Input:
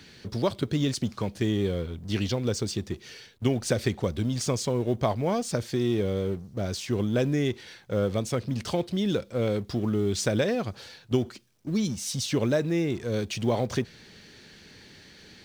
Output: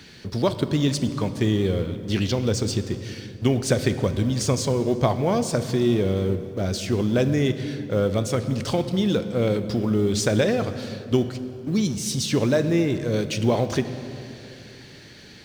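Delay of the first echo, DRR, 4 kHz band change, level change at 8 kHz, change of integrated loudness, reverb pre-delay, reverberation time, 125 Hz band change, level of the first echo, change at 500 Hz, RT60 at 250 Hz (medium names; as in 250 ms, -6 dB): no echo, 10.5 dB, +4.5 dB, +4.0 dB, +4.5 dB, 21 ms, 2.9 s, +5.0 dB, no echo, +4.5 dB, 3.4 s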